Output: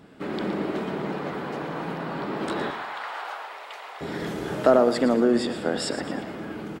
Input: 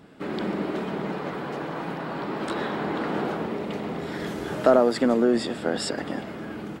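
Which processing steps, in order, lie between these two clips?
2.7–4.01 HPF 780 Hz 24 dB/oct; feedback echo 0.115 s, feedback 38%, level -12 dB

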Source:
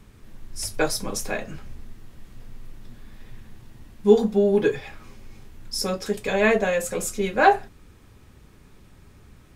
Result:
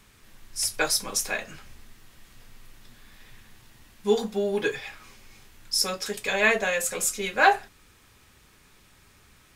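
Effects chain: tilt shelf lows -7.5 dB, about 770 Hz; gain -3 dB

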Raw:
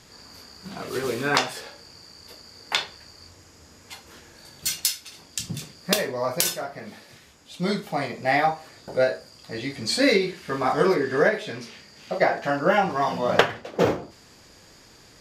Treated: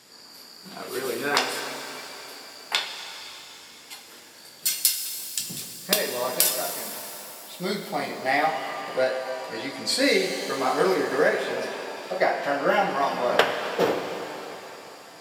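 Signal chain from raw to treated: HPF 230 Hz 12 dB/oct; high shelf 7200 Hz +8.5 dB; notch 6400 Hz, Q 6.9; shimmer reverb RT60 3.4 s, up +7 st, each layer -8 dB, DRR 5.5 dB; gain -2 dB

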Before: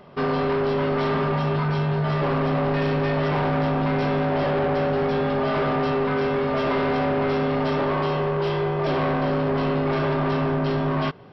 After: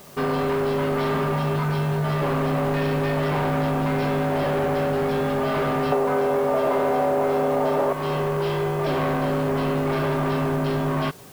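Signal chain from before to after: 5.92–7.93 bell 640 Hz +13.5 dB 2 oct; compressor, threshold -19 dBFS, peak gain reduction 9 dB; added noise white -49 dBFS

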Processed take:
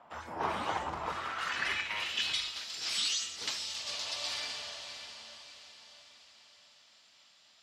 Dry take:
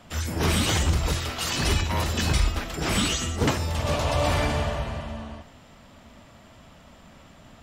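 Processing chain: diffused feedback echo 0.621 s, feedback 46%, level -10 dB; band-pass sweep 920 Hz -> 4600 Hz, 0.96–2.63; gain +1.5 dB

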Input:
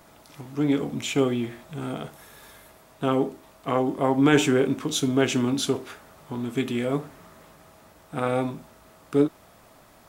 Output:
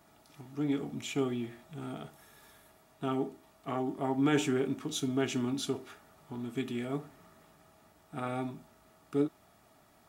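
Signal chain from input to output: notch comb 520 Hz; gain -8.5 dB

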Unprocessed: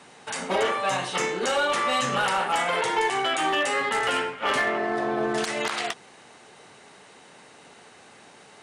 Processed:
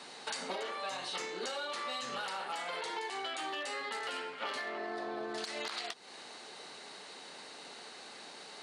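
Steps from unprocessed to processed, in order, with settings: HPF 230 Hz 12 dB/oct; bell 4300 Hz +11.5 dB 0.48 oct; compressor 12:1, threshold -35 dBFS, peak gain reduction 16.5 dB; gain -1 dB

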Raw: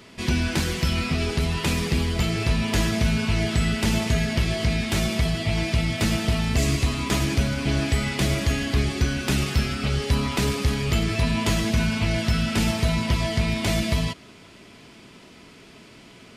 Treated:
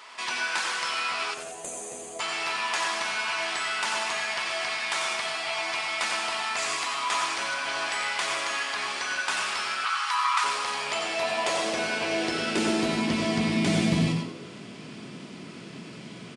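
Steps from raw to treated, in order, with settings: on a send at -4 dB: reverb RT60 0.30 s, pre-delay 86 ms; on the sum: high-pass sweep 970 Hz -> 150 Hz, 10.56–14.2; downsampling 22050 Hz; soft clip -9.5 dBFS, distortion -28 dB; 1.34–2.2 spectral gain 760–6000 Hz -23 dB; 9.85–10.44 resonant low shelf 730 Hz -14 dB, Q 3; frequency-shifting echo 88 ms, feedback 41%, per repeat +84 Hz, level -10.5 dB; in parallel at -1.5 dB: compressor, threshold -36 dBFS, peak gain reduction 18 dB; on the sum: gain -4 dB

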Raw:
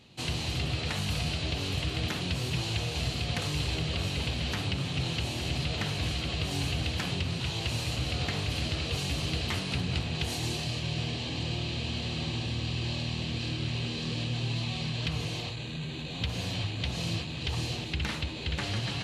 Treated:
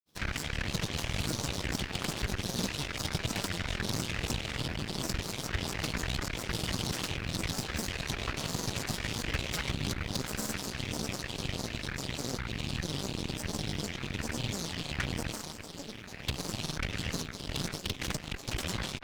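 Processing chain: requantised 10-bit, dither triangular; grains, pitch spread up and down by 12 st; added harmonics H 3 -15 dB, 4 -12 dB, 5 -39 dB, 7 -27 dB, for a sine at -22 dBFS

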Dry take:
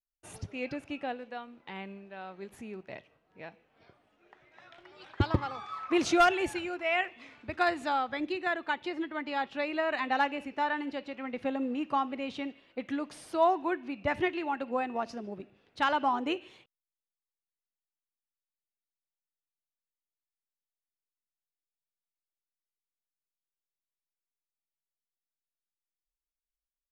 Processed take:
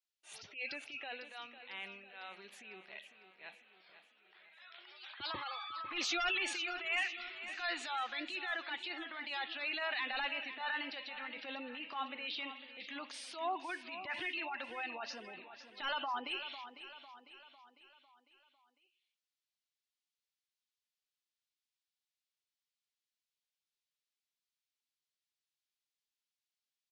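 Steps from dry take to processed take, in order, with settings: band-pass 3700 Hz, Q 1.2; soft clip -36.5 dBFS, distortion -9 dB; transient shaper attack -11 dB, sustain +4 dB; spectral gate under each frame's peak -20 dB strong; feedback echo 0.501 s, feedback 50%, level -12 dB; gain +7.5 dB

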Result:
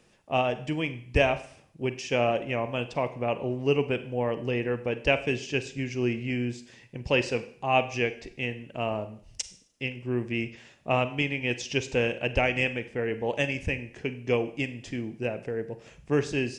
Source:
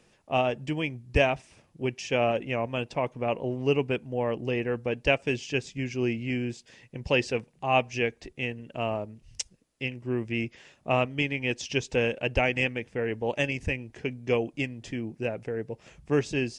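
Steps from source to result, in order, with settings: Schroeder reverb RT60 0.56 s, combs from 33 ms, DRR 11.5 dB

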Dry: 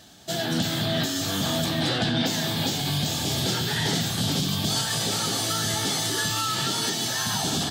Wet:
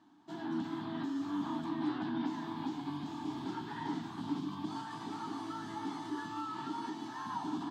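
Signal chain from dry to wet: double band-pass 540 Hz, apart 1.7 oct

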